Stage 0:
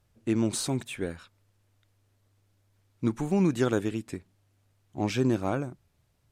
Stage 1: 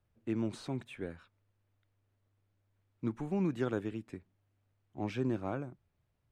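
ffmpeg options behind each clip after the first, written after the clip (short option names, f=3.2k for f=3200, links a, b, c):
-filter_complex "[0:a]bass=f=250:g=0,treble=f=4k:g=-12,acrossover=split=130|6100[a][b][c];[c]alimiter=level_in=18.5dB:limit=-24dB:level=0:latency=1:release=346,volume=-18.5dB[d];[a][b][d]amix=inputs=3:normalize=0,volume=-8dB"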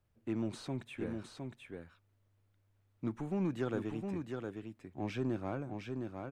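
-filter_complex "[0:a]asplit=2[a][b];[b]asoftclip=type=tanh:threshold=-35dB,volume=-3dB[c];[a][c]amix=inputs=2:normalize=0,aecho=1:1:711:0.562,volume=-4.5dB"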